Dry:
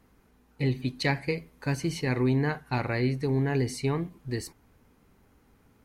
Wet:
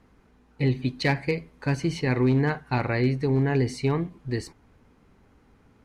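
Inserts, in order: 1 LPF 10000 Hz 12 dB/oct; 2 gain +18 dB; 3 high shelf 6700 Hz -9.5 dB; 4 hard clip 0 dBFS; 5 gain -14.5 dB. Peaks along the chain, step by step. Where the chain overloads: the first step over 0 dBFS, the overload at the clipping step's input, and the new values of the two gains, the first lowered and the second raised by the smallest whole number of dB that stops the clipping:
-14.0, +4.0, +4.0, 0.0, -14.5 dBFS; step 2, 4.0 dB; step 2 +14 dB, step 5 -10.5 dB

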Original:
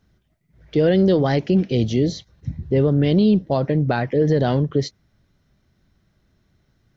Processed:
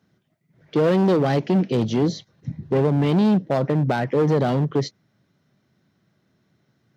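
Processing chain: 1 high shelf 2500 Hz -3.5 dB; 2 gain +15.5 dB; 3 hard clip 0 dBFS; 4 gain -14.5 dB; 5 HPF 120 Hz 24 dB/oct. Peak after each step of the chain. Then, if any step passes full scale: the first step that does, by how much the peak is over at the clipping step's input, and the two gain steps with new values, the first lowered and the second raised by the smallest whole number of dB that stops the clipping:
-7.5, +8.0, 0.0, -14.5, -8.5 dBFS; step 2, 8.0 dB; step 2 +7.5 dB, step 4 -6.5 dB

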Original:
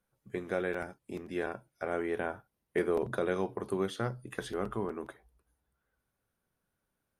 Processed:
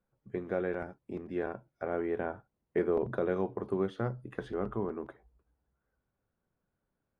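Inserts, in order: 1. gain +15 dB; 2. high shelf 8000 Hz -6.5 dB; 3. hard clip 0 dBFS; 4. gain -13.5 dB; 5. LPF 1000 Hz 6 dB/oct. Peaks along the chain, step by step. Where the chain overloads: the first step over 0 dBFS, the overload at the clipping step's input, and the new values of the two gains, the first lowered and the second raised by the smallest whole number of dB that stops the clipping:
-2.5, -2.5, -2.5, -16.0, -18.0 dBFS; no overload

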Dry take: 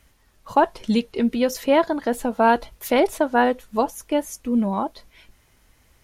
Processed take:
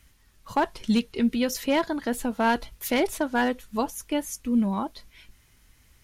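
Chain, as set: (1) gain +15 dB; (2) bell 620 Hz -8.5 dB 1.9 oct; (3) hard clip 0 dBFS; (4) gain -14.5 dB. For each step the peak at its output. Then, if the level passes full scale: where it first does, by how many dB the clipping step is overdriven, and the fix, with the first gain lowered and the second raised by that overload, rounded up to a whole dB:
+10.5, +6.5, 0.0, -14.5 dBFS; step 1, 6.5 dB; step 1 +8 dB, step 4 -7.5 dB

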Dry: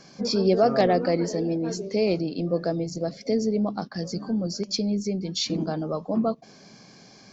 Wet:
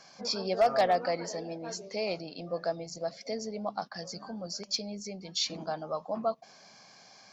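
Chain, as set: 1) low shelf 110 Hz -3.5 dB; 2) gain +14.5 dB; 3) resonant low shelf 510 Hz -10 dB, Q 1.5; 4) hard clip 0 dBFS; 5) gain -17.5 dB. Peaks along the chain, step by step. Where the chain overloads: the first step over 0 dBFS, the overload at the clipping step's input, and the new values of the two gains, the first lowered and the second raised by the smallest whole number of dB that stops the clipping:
-9.0, +5.5, +5.5, 0.0, -17.5 dBFS; step 2, 5.5 dB; step 2 +8.5 dB, step 5 -11.5 dB

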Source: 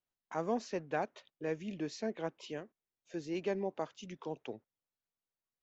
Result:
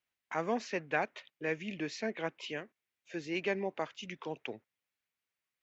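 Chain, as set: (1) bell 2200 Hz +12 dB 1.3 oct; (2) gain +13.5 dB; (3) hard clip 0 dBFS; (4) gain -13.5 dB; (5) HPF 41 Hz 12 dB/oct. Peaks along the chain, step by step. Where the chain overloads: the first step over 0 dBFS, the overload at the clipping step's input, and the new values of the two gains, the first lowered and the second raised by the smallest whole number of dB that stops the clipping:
-17.0, -3.5, -3.5, -17.0, -17.5 dBFS; no overload

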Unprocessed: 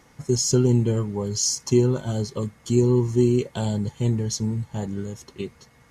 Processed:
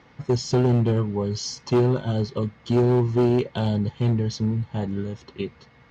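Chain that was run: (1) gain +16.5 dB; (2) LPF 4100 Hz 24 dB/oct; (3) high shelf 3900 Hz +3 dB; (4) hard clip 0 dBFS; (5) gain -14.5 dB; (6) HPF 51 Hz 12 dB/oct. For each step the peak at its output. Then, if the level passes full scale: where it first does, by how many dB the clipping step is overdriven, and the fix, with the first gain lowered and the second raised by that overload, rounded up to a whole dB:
+9.5, +9.5, +9.5, 0.0, -14.5, -10.5 dBFS; step 1, 9.5 dB; step 1 +6.5 dB, step 5 -4.5 dB

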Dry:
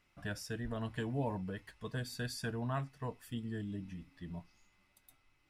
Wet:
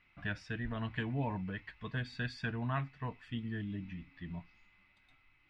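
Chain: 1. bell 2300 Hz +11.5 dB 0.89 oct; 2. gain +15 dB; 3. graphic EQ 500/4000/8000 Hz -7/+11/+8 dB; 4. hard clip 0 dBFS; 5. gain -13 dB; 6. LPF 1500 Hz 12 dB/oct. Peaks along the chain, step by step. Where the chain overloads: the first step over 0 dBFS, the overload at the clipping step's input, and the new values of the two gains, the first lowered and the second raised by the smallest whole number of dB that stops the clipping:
-21.5, -6.5, -3.0, -3.0, -16.0, -22.5 dBFS; no overload

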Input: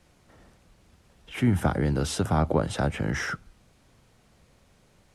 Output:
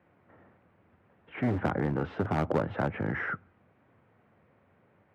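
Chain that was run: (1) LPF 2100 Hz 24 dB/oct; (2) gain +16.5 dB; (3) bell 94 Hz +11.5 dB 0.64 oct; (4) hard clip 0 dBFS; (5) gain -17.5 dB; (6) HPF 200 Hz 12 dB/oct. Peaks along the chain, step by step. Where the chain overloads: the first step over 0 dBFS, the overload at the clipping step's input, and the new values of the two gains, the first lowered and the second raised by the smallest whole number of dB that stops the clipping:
-9.5, +7.0, +8.5, 0.0, -17.5, -13.5 dBFS; step 2, 8.5 dB; step 2 +7.5 dB, step 5 -8.5 dB

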